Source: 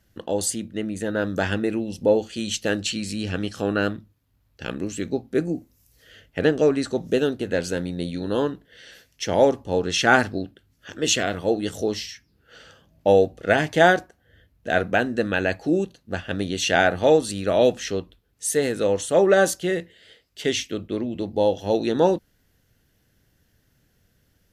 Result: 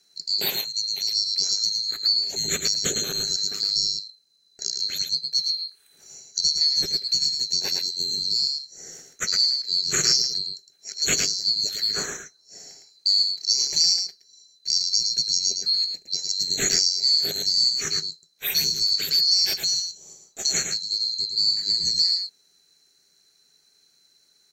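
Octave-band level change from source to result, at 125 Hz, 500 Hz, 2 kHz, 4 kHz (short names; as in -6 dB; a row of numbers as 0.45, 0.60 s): -13.5, -22.0, -11.0, +13.5 dB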